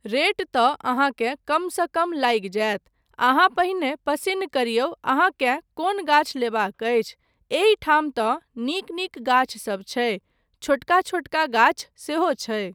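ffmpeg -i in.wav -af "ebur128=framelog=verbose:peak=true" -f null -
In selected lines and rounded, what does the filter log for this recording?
Integrated loudness:
  I:         -22.4 LUFS
  Threshold: -32.6 LUFS
Loudness range:
  LRA:         1.9 LU
  Threshold: -42.7 LUFS
  LRA low:   -23.9 LUFS
  LRA high:  -21.9 LUFS
True peak:
  Peak:       -4.5 dBFS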